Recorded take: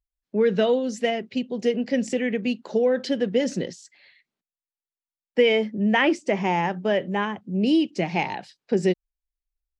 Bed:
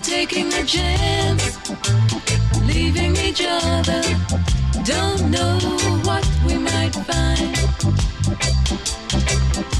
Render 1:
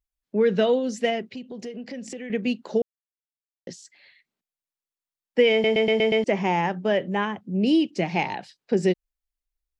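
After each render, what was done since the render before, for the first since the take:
0:01.23–0:02.30: downward compressor 4 to 1, threshold −34 dBFS
0:02.82–0:03.67: silence
0:05.52: stutter in place 0.12 s, 6 plays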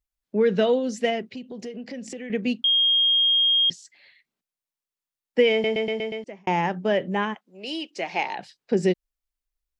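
0:02.64–0:03.70: beep over 3,240 Hz −16.5 dBFS
0:05.39–0:06.47: fade out
0:07.33–0:08.37: high-pass filter 1,100 Hz → 380 Hz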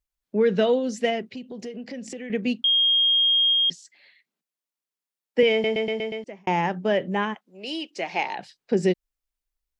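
0:03.53–0:05.43: elliptic high-pass filter 150 Hz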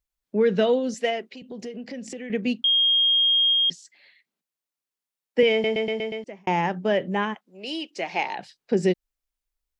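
0:00.94–0:01.42: high-pass filter 360 Hz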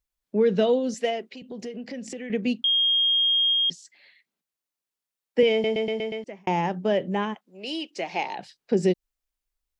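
dynamic equaliser 1,700 Hz, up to −6 dB, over −37 dBFS, Q 1.1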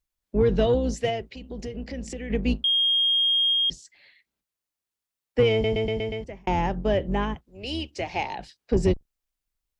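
sub-octave generator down 2 octaves, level 0 dB
soft clipping −9.5 dBFS, distortion −24 dB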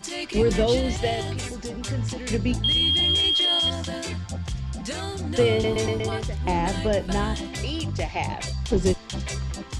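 mix in bed −12 dB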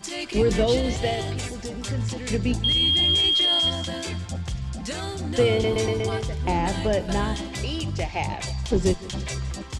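repeating echo 163 ms, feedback 53%, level −18 dB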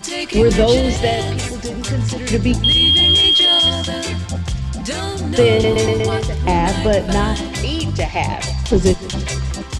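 level +8 dB
brickwall limiter −3 dBFS, peak gain reduction 1 dB

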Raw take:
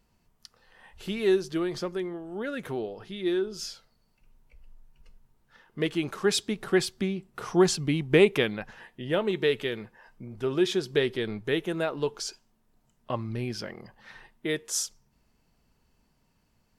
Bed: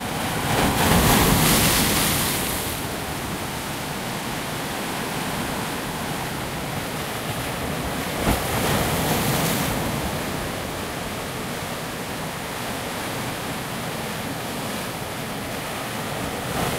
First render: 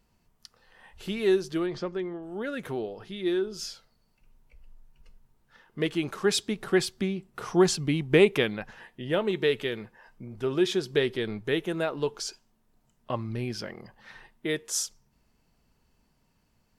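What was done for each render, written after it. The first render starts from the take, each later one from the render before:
0:01.66–0:02.23: high-frequency loss of the air 120 metres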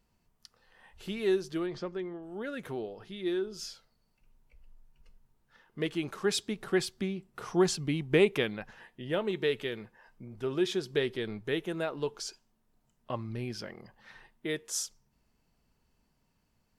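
level −4.5 dB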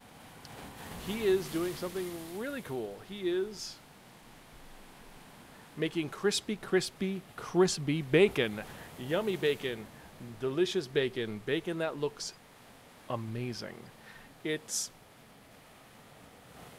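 mix in bed −27 dB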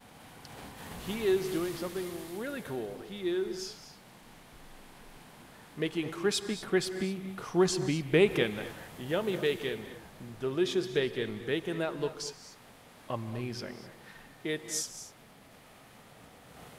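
reverb whose tail is shaped and stops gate 270 ms rising, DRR 10.5 dB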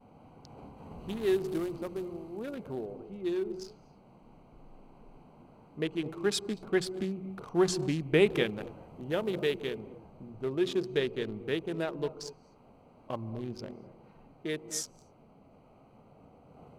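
adaptive Wiener filter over 25 samples
mains-hum notches 60/120/180 Hz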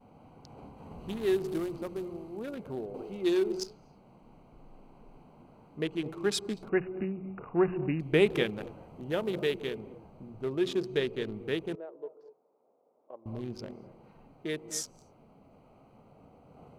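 0:02.94–0:03.64: drawn EQ curve 150 Hz 0 dB, 420 Hz +6 dB, 1,700 Hz +7 dB, 4,700 Hz +11 dB
0:06.69–0:08.00: linear-phase brick-wall low-pass 2,900 Hz
0:11.75–0:13.26: four-pole ladder band-pass 560 Hz, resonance 40%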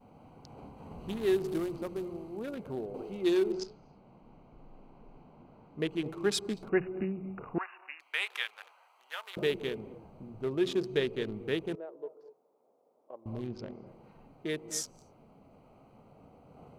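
0:03.52–0:05.79: high-frequency loss of the air 100 metres
0:07.58–0:09.37: high-pass filter 990 Hz 24 dB per octave
0:13.47–0:13.87: high-frequency loss of the air 110 metres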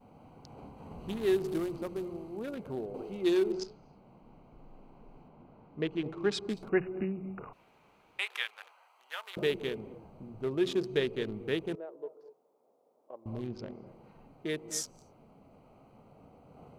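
0:05.28–0:06.49: high-frequency loss of the air 110 metres
0:07.53–0:08.19: fill with room tone

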